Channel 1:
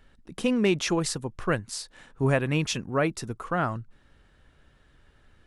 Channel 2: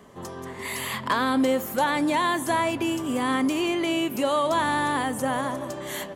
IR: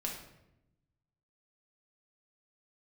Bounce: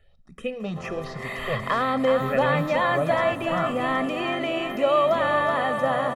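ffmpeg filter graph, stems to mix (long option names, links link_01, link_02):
-filter_complex "[0:a]asplit=2[link_01][link_02];[link_02]afreqshift=2.1[link_03];[link_01][link_03]amix=inputs=2:normalize=1,volume=-3.5dB,asplit=2[link_04][link_05];[link_05]volume=-13dB[link_06];[1:a]highpass=120,adelay=600,volume=0.5dB,asplit=2[link_07][link_08];[link_08]volume=-6.5dB[link_09];[2:a]atrim=start_sample=2205[link_10];[link_06][link_10]afir=irnorm=-1:irlink=0[link_11];[link_09]aecho=0:1:374|748|1122|1496|1870|2244|2618|2992:1|0.55|0.303|0.166|0.0915|0.0503|0.0277|0.0152[link_12];[link_04][link_07][link_11][link_12]amix=inputs=4:normalize=0,acrossover=split=3400[link_13][link_14];[link_14]acompressor=threshold=-51dB:ratio=4:attack=1:release=60[link_15];[link_13][link_15]amix=inputs=2:normalize=0,highshelf=frequency=4500:gain=-5.5,aecho=1:1:1.6:0.66"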